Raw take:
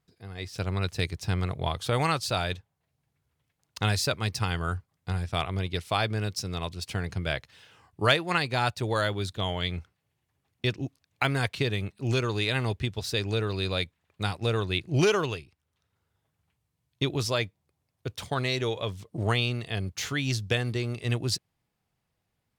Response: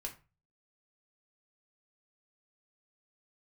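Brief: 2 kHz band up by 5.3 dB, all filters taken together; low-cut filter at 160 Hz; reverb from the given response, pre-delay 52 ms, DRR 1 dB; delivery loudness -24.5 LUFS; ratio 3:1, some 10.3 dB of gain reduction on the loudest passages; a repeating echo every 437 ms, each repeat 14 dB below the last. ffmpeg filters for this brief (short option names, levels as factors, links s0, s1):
-filter_complex "[0:a]highpass=160,equalizer=f=2000:t=o:g=7,acompressor=threshold=0.0447:ratio=3,aecho=1:1:437|874:0.2|0.0399,asplit=2[s0][s1];[1:a]atrim=start_sample=2205,adelay=52[s2];[s1][s2]afir=irnorm=-1:irlink=0,volume=1.06[s3];[s0][s3]amix=inputs=2:normalize=0,volume=1.88"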